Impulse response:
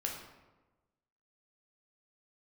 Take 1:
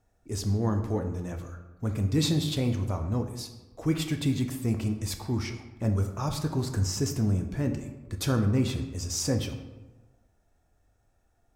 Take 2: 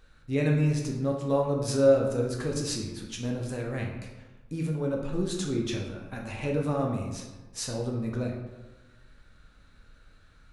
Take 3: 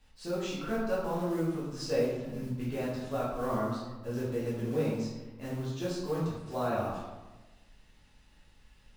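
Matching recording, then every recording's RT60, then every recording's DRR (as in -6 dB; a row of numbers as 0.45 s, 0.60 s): 2; 1.2 s, 1.2 s, 1.2 s; 5.0 dB, -0.5 dB, -9.0 dB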